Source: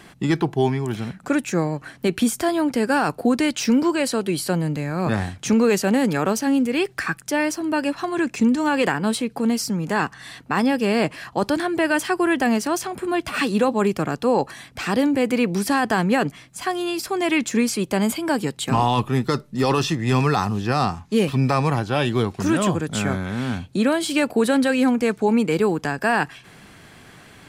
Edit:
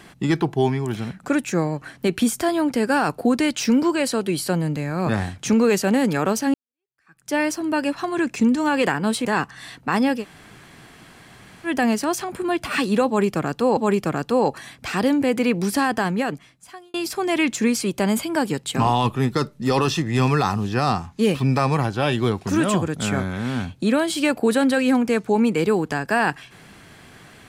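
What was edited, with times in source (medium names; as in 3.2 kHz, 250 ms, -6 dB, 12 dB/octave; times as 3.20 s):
6.54–7.33 s: fade in exponential
9.25–9.88 s: delete
10.83–12.31 s: room tone, crossfade 0.10 s
13.70–14.40 s: loop, 2 plays
15.71–16.87 s: fade out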